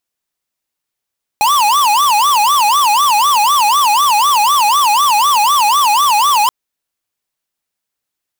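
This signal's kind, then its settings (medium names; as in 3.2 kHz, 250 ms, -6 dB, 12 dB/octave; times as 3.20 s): siren wail 821–1180 Hz 4 per s square -11 dBFS 5.08 s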